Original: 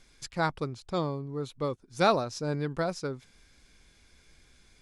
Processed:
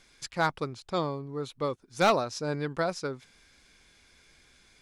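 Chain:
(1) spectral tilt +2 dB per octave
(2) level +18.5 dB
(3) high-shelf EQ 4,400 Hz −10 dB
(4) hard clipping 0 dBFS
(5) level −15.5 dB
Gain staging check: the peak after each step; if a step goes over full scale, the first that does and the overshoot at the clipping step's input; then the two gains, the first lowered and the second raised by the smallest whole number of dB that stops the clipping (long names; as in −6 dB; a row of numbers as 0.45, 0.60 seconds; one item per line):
−9.5, +9.0, +8.0, 0.0, −15.5 dBFS
step 2, 8.0 dB
step 2 +10.5 dB, step 5 −7.5 dB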